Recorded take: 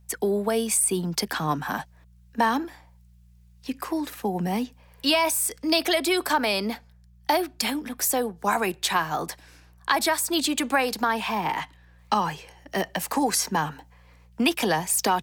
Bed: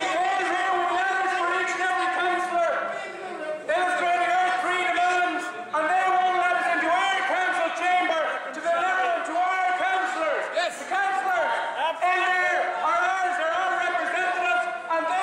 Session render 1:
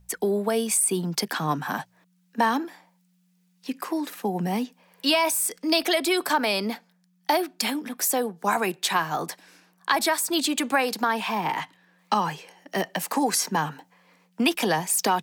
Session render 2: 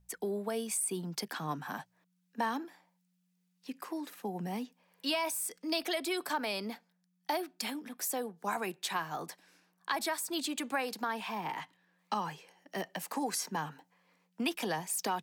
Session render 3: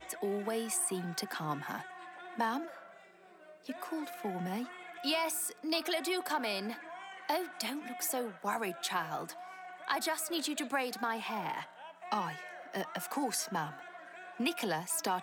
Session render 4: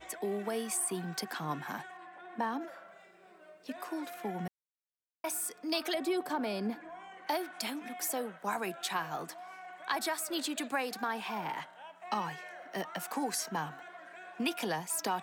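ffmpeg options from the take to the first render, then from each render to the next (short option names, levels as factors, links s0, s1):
-af "bandreject=f=60:t=h:w=4,bandreject=f=120:t=h:w=4"
-af "volume=0.282"
-filter_complex "[1:a]volume=0.0596[s0];[0:a][s0]amix=inputs=2:normalize=0"
-filter_complex "[0:a]asettb=1/sr,asplit=3[s0][s1][s2];[s0]atrim=end=1.974[s3];[s1]atrim=start=1.97:end=2.61,asetpts=PTS-STARTPTS,afade=t=in:d=0.004:c=qsin,afade=t=out:st=0.636:d=0.004:c=qsin,highshelf=f=2500:g=-10[s4];[s2]atrim=start=2.606[s5];[s3][s4]acrossfade=d=0.004:c1=hsin:c2=qsin[s6];[s6][s5]acrossfade=d=0.004:c1=qsin:c2=hsin,asettb=1/sr,asplit=3[s7][s8][s9];[s7]atrim=end=5.944[s10];[s8]atrim=start=5.94:end=7.27,asetpts=PTS-STARTPTS,afade=t=in:d=0.004:c=qsin,afade=t=out:st=1.326:d=0.004:c=qsin,tiltshelf=f=710:g=7[s11];[s9]atrim=start=7.266[s12];[s10][s11]acrossfade=d=0.004:c1=hsin:c2=qsin[s13];[s13][s12]acrossfade=d=0.004:c1=qsin:c2=hsin,asplit=3[s14][s15][s16];[s14]atrim=end=4.48,asetpts=PTS-STARTPTS,afade=t=out:st=4.476:d=0.004:c=hsin[s17];[s15]atrim=start=4.48:end=5.24,asetpts=PTS-STARTPTS,volume=0[s18];[s16]atrim=start=5.24,asetpts=PTS-STARTPTS,afade=t=in:d=0.004:c=hsin[s19];[s17][s18][s19]concat=n=3:v=0:a=1"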